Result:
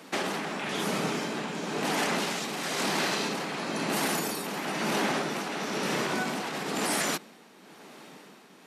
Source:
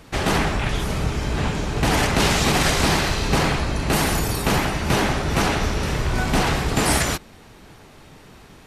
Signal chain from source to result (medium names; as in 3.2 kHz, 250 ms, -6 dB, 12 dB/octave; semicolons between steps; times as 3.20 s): steep high-pass 180 Hz 36 dB/octave; peak limiter -18.5 dBFS, peak gain reduction 11 dB; tremolo 1 Hz, depth 53%